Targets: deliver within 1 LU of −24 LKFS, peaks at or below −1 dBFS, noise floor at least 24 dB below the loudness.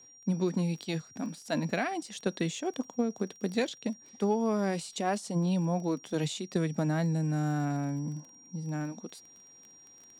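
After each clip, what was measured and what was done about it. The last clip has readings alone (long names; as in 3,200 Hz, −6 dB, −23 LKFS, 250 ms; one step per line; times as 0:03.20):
crackle rate 19 per second; interfering tone 5,700 Hz; level of the tone −53 dBFS; integrated loudness −32.0 LKFS; sample peak −16.0 dBFS; target loudness −24.0 LKFS
→ click removal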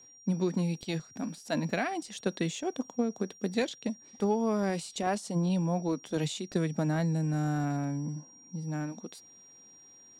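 crackle rate 0 per second; interfering tone 5,700 Hz; level of the tone −53 dBFS
→ notch filter 5,700 Hz, Q 30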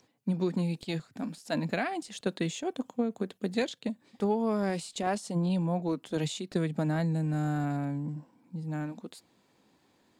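interfering tone none found; integrated loudness −32.0 LKFS; sample peak −16.0 dBFS; target loudness −24.0 LKFS
→ level +8 dB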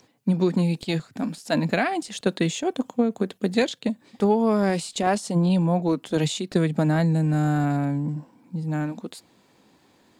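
integrated loudness −24.0 LKFS; sample peak −8.0 dBFS; background noise floor −60 dBFS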